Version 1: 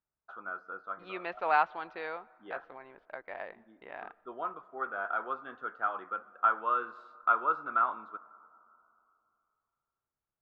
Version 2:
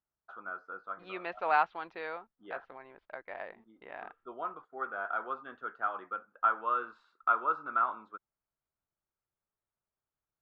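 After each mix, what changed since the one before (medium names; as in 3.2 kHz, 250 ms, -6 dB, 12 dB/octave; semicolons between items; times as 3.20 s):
reverb: off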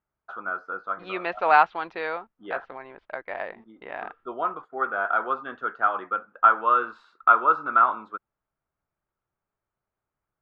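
first voice +10.5 dB; second voice +9.5 dB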